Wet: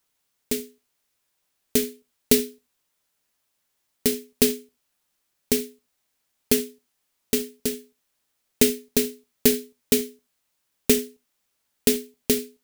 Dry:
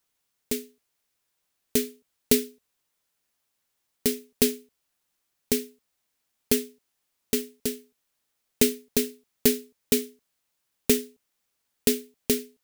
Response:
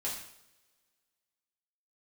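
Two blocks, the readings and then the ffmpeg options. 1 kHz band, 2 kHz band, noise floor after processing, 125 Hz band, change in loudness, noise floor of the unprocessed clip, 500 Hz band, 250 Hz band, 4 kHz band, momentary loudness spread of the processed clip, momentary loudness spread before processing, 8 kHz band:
+2.5 dB, +2.5 dB, -75 dBFS, +2.5 dB, +2.5 dB, -78 dBFS, +3.0 dB, +2.5 dB, +3.0 dB, 12 LU, 13 LU, +2.5 dB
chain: -filter_complex "[0:a]asplit=2[s0][s1];[1:a]atrim=start_sample=2205,atrim=end_sample=3969[s2];[s1][s2]afir=irnorm=-1:irlink=0,volume=0.299[s3];[s0][s3]amix=inputs=2:normalize=0,volume=1.12"

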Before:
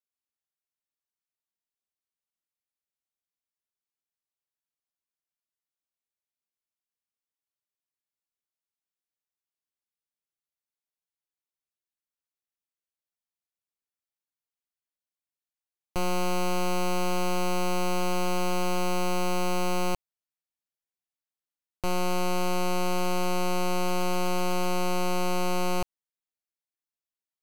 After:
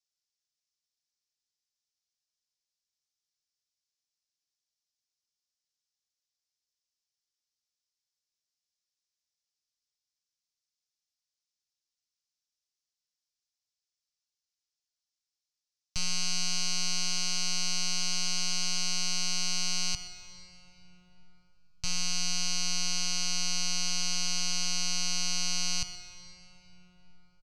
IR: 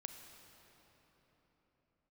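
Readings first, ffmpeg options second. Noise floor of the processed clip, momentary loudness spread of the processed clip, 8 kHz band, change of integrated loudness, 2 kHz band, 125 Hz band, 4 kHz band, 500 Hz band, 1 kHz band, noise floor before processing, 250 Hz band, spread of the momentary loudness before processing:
under -85 dBFS, 5 LU, +9.0 dB, -0.5 dB, -2.5 dB, -10.0 dB, +8.0 dB, -24.0 dB, -16.5 dB, under -85 dBFS, -13.0 dB, 2 LU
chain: -filter_complex "[0:a]firequalizer=gain_entry='entry(140,0);entry(270,-29);entry(1600,-7);entry(5300,13);entry(14000,-24)':delay=0.05:min_phase=1,aecho=1:1:125:0.0944,asplit=2[s0][s1];[1:a]atrim=start_sample=2205,lowshelf=f=320:g=-6[s2];[s1][s2]afir=irnorm=-1:irlink=0,volume=2.51[s3];[s0][s3]amix=inputs=2:normalize=0,volume=0.473"

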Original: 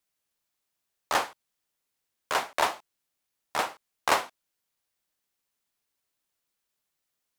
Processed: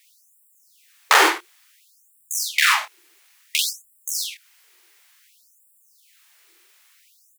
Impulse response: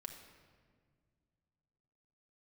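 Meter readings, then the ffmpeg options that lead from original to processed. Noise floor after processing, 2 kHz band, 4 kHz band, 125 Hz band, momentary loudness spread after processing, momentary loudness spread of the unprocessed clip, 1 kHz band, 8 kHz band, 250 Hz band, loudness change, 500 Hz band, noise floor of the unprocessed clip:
-59 dBFS, +12.0 dB, +13.0 dB, under -20 dB, 15 LU, 11 LU, +5.5 dB, +14.0 dB, +8.5 dB, +9.5 dB, +2.5 dB, -83 dBFS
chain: -filter_complex "[0:a]bandreject=f=50:t=h:w=6,bandreject=f=100:t=h:w=6,bandreject=f=150:t=h:w=6,bandreject=f=200:t=h:w=6,bandreject=f=250:t=h:w=6,bandreject=f=300:t=h:w=6,bandreject=f=350:t=h:w=6,acrossover=split=200[s0][s1];[s1]acompressor=threshold=0.0398:ratio=10[s2];[s0][s2]amix=inputs=2:normalize=0,equalizer=f=2100:t=o:w=1.1:g=6.5,asplit=2[s3][s4];[s4]acrusher=bits=4:mix=0:aa=0.000001,volume=0.422[s5];[s3][s5]amix=inputs=2:normalize=0,aeval=exprs='(tanh(5.62*val(0)+0.3)-tanh(0.3))/5.62':c=same,lowshelf=f=400:t=q:w=3:g=12,aecho=1:1:48|74:0.562|0.237,acontrast=80,alimiter=level_in=6.31:limit=0.891:release=50:level=0:latency=1,afftfilt=real='re*gte(b*sr/1024,320*pow(7500/320,0.5+0.5*sin(2*PI*0.57*pts/sr)))':imag='im*gte(b*sr/1024,320*pow(7500/320,0.5+0.5*sin(2*PI*0.57*pts/sr)))':win_size=1024:overlap=0.75,volume=1.12"

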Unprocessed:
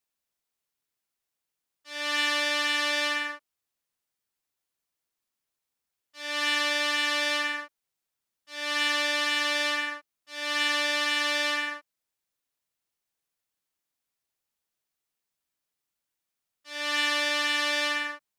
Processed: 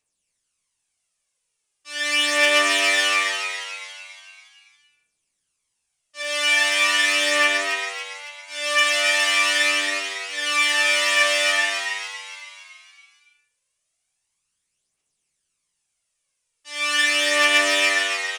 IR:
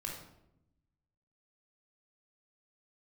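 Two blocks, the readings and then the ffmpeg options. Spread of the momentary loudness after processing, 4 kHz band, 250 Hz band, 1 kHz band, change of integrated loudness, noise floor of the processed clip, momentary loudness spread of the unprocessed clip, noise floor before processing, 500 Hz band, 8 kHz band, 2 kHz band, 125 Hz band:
17 LU, +7.0 dB, +2.5 dB, +6.0 dB, +7.5 dB, -77 dBFS, 11 LU, under -85 dBFS, +8.5 dB, +11.5 dB, +8.5 dB, no reading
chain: -filter_complex "[0:a]aresample=22050,aresample=44100,aphaser=in_gain=1:out_gain=1:delay=3.5:decay=0.59:speed=0.2:type=triangular,asplit=7[s0][s1][s2][s3][s4][s5][s6];[s1]adelay=280,afreqshift=96,volume=0.447[s7];[s2]adelay=560,afreqshift=192,volume=0.209[s8];[s3]adelay=840,afreqshift=288,volume=0.0989[s9];[s4]adelay=1120,afreqshift=384,volume=0.0462[s10];[s5]adelay=1400,afreqshift=480,volume=0.0219[s11];[s6]adelay=1680,afreqshift=576,volume=0.0102[s12];[s0][s7][s8][s9][s10][s11][s12]amix=inputs=7:normalize=0,asplit=2[s13][s14];[1:a]atrim=start_sample=2205,afade=t=out:st=0.27:d=0.01,atrim=end_sample=12348[s15];[s14][s15]afir=irnorm=-1:irlink=0,volume=0.531[s16];[s13][s16]amix=inputs=2:normalize=0,aexciter=amount=1:drive=9:freq=2200"

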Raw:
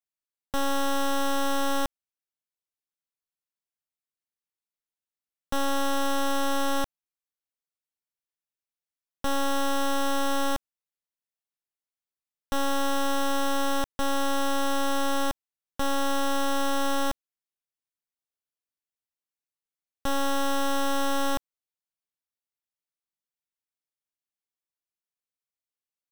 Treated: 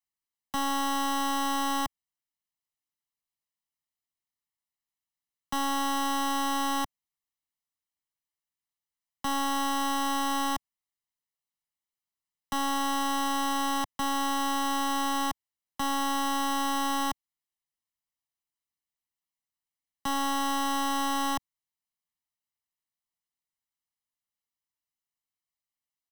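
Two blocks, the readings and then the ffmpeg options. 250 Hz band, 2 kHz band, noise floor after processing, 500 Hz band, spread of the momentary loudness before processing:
-1.5 dB, -1.5 dB, under -85 dBFS, -12.0 dB, 6 LU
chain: -filter_complex "[0:a]aecho=1:1:1:0.84,acrossover=split=150|600|2000[s0][s1][s2][s3];[s0]asoftclip=type=tanh:threshold=0.02[s4];[s4][s1][s2][s3]amix=inputs=4:normalize=0,volume=0.75"

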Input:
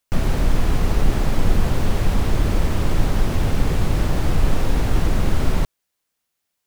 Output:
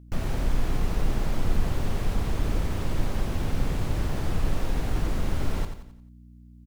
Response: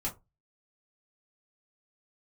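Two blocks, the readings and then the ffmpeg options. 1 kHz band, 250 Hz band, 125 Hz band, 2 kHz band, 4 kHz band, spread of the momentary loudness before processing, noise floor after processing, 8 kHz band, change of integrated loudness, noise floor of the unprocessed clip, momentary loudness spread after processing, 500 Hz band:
-8.0 dB, -7.5 dB, -7.5 dB, -8.0 dB, -8.0 dB, 1 LU, -49 dBFS, -8.0 dB, -7.5 dB, -78 dBFS, 2 LU, -8.0 dB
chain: -af "aeval=exprs='val(0)+0.0126*(sin(2*PI*60*n/s)+sin(2*PI*2*60*n/s)/2+sin(2*PI*3*60*n/s)/3+sin(2*PI*4*60*n/s)/4+sin(2*PI*5*60*n/s)/5)':c=same,aecho=1:1:88|176|264|352|440:0.376|0.162|0.0695|0.0299|0.0128,volume=0.376"

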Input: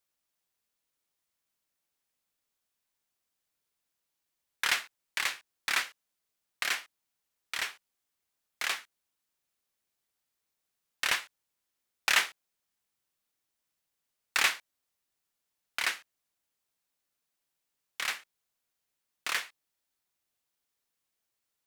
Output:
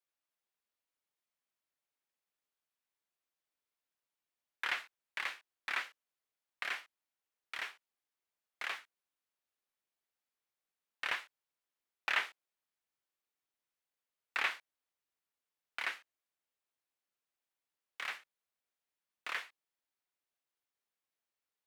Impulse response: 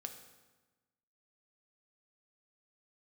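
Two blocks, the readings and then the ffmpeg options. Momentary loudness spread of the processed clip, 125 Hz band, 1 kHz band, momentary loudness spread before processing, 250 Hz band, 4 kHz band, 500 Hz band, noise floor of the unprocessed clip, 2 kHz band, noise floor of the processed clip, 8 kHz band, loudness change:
14 LU, no reading, -5.5 dB, 13 LU, -8.5 dB, -11.0 dB, -6.0 dB, -84 dBFS, -6.5 dB, under -85 dBFS, -19.5 dB, -8.0 dB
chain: -filter_complex "[0:a]acrossover=split=3700[s0][s1];[s1]acompressor=threshold=0.01:ratio=4:attack=1:release=60[s2];[s0][s2]amix=inputs=2:normalize=0,bass=f=250:g=-8,treble=f=4000:g=-7,volume=0.531"

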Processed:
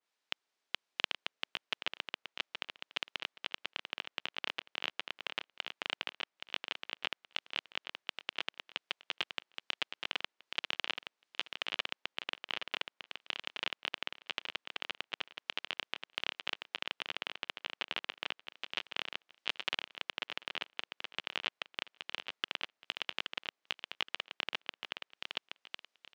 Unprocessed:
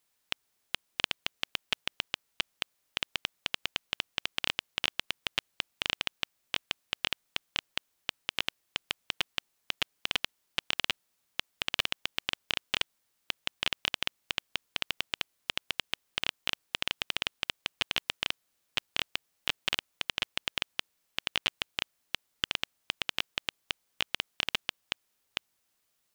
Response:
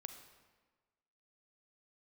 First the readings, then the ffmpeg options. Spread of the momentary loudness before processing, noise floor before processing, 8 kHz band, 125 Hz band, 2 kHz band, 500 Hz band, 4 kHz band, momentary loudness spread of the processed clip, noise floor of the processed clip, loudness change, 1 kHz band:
8 LU, -77 dBFS, -13.0 dB, under -15 dB, -4.5 dB, -3.0 dB, -6.0 dB, 5 LU, under -85 dBFS, -5.5 dB, -3.0 dB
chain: -filter_complex "[0:a]highpass=290,lowpass=5000,asplit=2[s0][s1];[s1]aecho=0:1:823|1646|2469:0.473|0.0994|0.0209[s2];[s0][s2]amix=inputs=2:normalize=0,adynamicequalizer=threshold=0.00447:dfrequency=2600:dqfactor=0.7:tfrequency=2600:tqfactor=0.7:attack=5:release=100:ratio=0.375:range=3.5:mode=cutabove:tftype=highshelf,volume=0.668"

